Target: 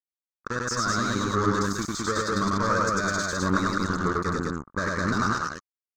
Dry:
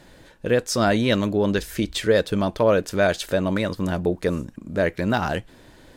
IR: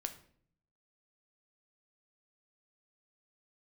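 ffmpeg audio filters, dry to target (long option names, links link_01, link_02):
-af "dynaudnorm=framelen=250:gausssize=7:maxgain=8dB,aexciter=amount=4.3:drive=5.2:freq=2400,afftfilt=real='re*gte(hypot(re,im),0.0794)':imag='im*gte(hypot(re,im),0.0794)':win_size=1024:overlap=0.75,asoftclip=type=tanh:threshold=-10.5dB,acrusher=bits=2:mix=0:aa=0.5,highshelf=frequency=5900:gain=9,alimiter=limit=-13dB:level=0:latency=1:release=76,firequalizer=gain_entry='entry(220,0);entry(750,-12);entry(1200,14);entry(2800,-24);entry(4200,-6);entry(6700,-3);entry(10000,-28)':delay=0.05:min_phase=1,aecho=1:1:96.21|207:0.891|0.794,volume=-4.5dB"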